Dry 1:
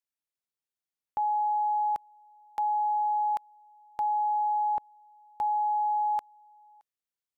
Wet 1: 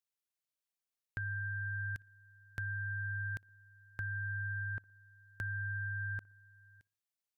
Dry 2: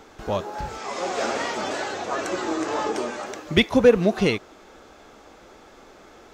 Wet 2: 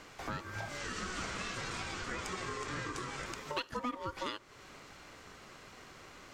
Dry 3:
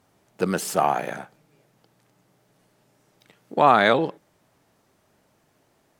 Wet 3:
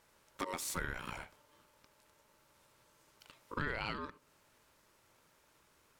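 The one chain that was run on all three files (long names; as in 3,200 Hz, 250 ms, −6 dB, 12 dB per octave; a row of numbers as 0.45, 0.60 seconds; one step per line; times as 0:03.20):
tilt shelving filter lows −3.5 dB, about 1,200 Hz
downward compressor 4 to 1, threshold −34 dBFS
ring modulation 740 Hz
on a send: tape delay 61 ms, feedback 54%, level −23 dB, low-pass 1,200 Hz
on the sum: level −1 dB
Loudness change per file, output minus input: −11.0, −15.5, −19.5 LU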